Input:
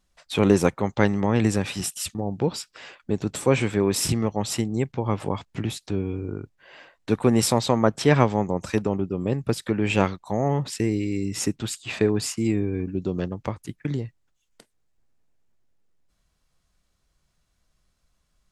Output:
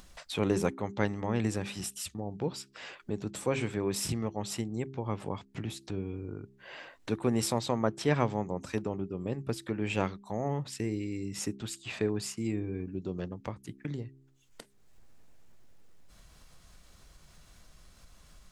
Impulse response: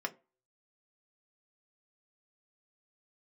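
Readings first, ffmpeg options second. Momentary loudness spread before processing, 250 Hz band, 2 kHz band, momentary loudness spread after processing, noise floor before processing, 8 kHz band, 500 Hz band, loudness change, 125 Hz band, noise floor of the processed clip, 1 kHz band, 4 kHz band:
11 LU, −9.5 dB, −8.5 dB, 11 LU, −72 dBFS, −9.0 dB, −9.0 dB, −9.5 dB, −9.5 dB, −61 dBFS, −9.0 dB, −8.5 dB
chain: -af "bandreject=frequency=66.77:width_type=h:width=4,bandreject=frequency=133.54:width_type=h:width=4,bandreject=frequency=200.31:width_type=h:width=4,bandreject=frequency=267.08:width_type=h:width=4,bandreject=frequency=333.85:width_type=h:width=4,bandreject=frequency=400.62:width_type=h:width=4,acompressor=mode=upward:threshold=-26dB:ratio=2.5,volume=-9dB"

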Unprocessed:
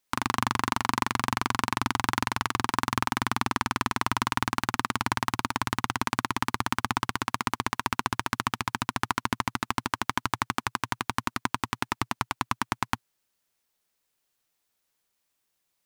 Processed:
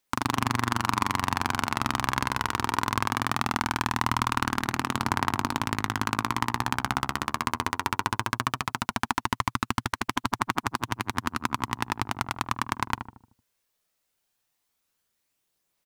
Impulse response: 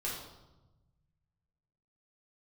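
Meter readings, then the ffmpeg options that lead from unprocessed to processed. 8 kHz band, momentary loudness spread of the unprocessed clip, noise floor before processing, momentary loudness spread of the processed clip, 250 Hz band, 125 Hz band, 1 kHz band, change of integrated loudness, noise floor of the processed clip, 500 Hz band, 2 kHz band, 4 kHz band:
0.0 dB, 4 LU, −78 dBFS, 4 LU, +1.0 dB, +2.5 dB, +1.0 dB, +1.0 dB, −78 dBFS, +1.0 dB, +0.5 dB, +0.5 dB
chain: -filter_complex "[0:a]asplit=2[link_01][link_02];[link_02]adelay=76,lowpass=frequency=970:poles=1,volume=-6dB,asplit=2[link_03][link_04];[link_04]adelay=76,lowpass=frequency=970:poles=1,volume=0.51,asplit=2[link_05][link_06];[link_06]adelay=76,lowpass=frequency=970:poles=1,volume=0.51,asplit=2[link_07][link_08];[link_08]adelay=76,lowpass=frequency=970:poles=1,volume=0.51,asplit=2[link_09][link_10];[link_10]adelay=76,lowpass=frequency=970:poles=1,volume=0.51,asplit=2[link_11][link_12];[link_12]adelay=76,lowpass=frequency=970:poles=1,volume=0.51[link_13];[link_03][link_05][link_07][link_09][link_11][link_13]amix=inputs=6:normalize=0[link_14];[link_01][link_14]amix=inputs=2:normalize=0,aphaser=in_gain=1:out_gain=1:delay=2.2:decay=0.22:speed=0.19:type=triangular"

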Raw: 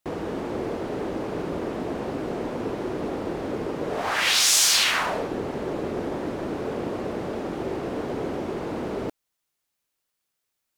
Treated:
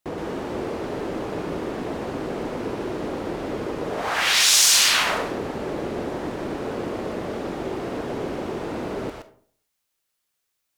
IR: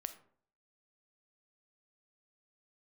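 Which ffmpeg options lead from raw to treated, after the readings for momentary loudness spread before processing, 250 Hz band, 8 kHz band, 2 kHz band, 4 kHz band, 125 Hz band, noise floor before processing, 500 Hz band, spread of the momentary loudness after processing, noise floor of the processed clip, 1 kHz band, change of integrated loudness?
13 LU, +0.5 dB, +3.0 dB, +2.5 dB, +3.0 dB, +0.5 dB, −80 dBFS, +0.5 dB, 15 LU, −77 dBFS, +1.5 dB, +2.5 dB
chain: -filter_complex "[0:a]asplit=2[link_01][link_02];[link_02]equalizer=frequency=240:width=0.45:gain=-14.5[link_03];[1:a]atrim=start_sample=2205,adelay=121[link_04];[link_03][link_04]afir=irnorm=-1:irlink=0,volume=3dB[link_05];[link_01][link_05]amix=inputs=2:normalize=0"

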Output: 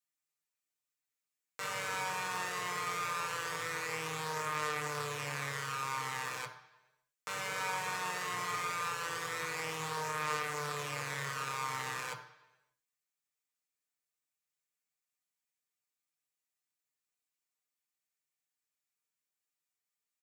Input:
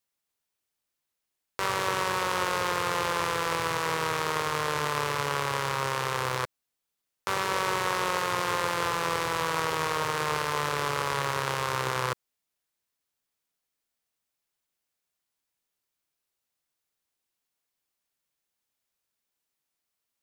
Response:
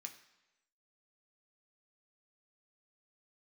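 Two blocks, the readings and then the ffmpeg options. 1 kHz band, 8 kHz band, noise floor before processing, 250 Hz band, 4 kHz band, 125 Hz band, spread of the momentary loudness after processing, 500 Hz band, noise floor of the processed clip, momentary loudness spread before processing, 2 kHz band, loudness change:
−9.0 dB, −5.5 dB, −84 dBFS, −11.5 dB, −9.0 dB, −10.0 dB, 4 LU, −12.0 dB, below −85 dBFS, 3 LU, −6.5 dB, −8.5 dB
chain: -filter_complex "[0:a]aecho=1:1:6.6:0.85[link_01];[1:a]atrim=start_sample=2205[link_02];[link_01][link_02]afir=irnorm=-1:irlink=0,volume=-5dB"

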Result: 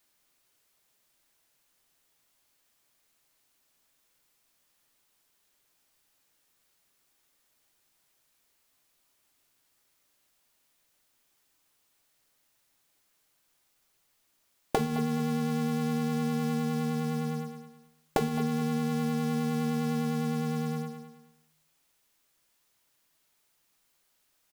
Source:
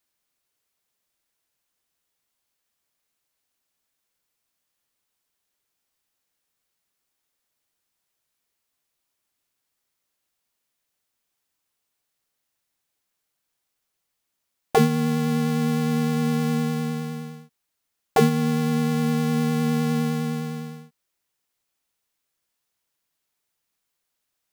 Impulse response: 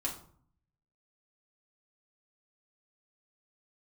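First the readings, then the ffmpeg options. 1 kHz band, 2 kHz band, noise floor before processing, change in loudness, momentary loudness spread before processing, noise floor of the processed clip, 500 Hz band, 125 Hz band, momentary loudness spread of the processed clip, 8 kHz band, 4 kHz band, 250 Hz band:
−6.0 dB, −7.5 dB, −79 dBFS, −7.5 dB, 11 LU, −72 dBFS, −7.5 dB, −7.5 dB, 5 LU, −7.0 dB, −7.5 dB, −6.5 dB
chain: -filter_complex "[0:a]aecho=1:1:212|424|636:0.224|0.0627|0.0176,acompressor=threshold=-32dB:ratio=12,asplit=2[link_01][link_02];[1:a]atrim=start_sample=2205,asetrate=48510,aresample=44100[link_03];[link_02][link_03]afir=irnorm=-1:irlink=0,volume=-10.5dB[link_04];[link_01][link_04]amix=inputs=2:normalize=0,volume=5dB"

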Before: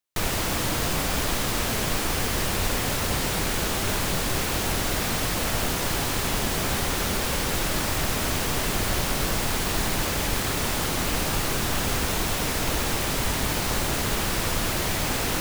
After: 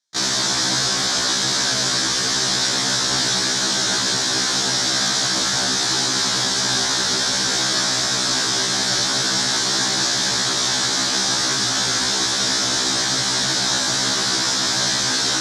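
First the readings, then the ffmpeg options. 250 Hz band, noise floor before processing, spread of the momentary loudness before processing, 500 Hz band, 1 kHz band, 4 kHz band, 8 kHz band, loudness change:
+1.0 dB, −27 dBFS, 0 LU, +0.5 dB, +3.5 dB, +12.5 dB, +10.0 dB, +7.5 dB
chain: -af "highpass=frequency=120:width=0.5412,highpass=frequency=120:width=1.3066,equalizer=frequency=160:width_type=q:width=4:gain=-9,equalizer=frequency=490:width_type=q:width=4:gain=-6,equalizer=frequency=1600:width_type=q:width=4:gain=7,equalizer=frequency=2800:width_type=q:width=4:gain=-6,equalizer=frequency=4500:width_type=q:width=4:gain=-4,lowpass=frequency=5200:width=0.5412,lowpass=frequency=5200:width=1.3066,aexciter=amount=8.1:drive=5.2:freq=3700,afftfilt=real='re*1.73*eq(mod(b,3),0)':imag='im*1.73*eq(mod(b,3),0)':win_size=2048:overlap=0.75,volume=5dB"

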